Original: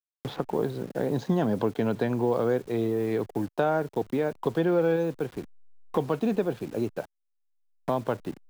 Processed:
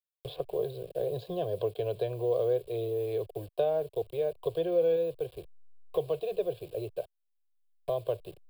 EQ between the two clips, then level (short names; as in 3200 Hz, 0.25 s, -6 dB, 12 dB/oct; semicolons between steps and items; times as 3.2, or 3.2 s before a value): fixed phaser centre 560 Hz, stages 4; fixed phaser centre 1300 Hz, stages 8; 0.0 dB